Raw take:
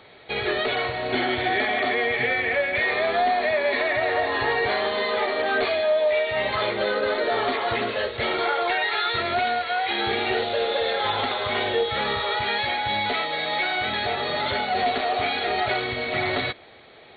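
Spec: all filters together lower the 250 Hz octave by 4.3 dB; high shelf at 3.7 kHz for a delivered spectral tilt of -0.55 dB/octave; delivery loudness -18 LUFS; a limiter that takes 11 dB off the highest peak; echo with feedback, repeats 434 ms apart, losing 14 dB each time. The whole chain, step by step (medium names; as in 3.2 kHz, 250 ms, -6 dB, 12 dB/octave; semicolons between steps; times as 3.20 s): peaking EQ 250 Hz -6.5 dB; treble shelf 3.7 kHz -4 dB; peak limiter -23 dBFS; feedback delay 434 ms, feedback 20%, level -14 dB; trim +12 dB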